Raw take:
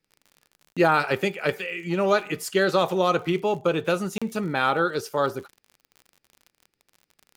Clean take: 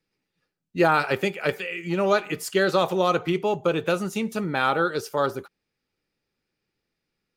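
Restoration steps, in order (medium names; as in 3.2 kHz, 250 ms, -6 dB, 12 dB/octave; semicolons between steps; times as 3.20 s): de-click; interpolate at 0.73/4.18 s, 36 ms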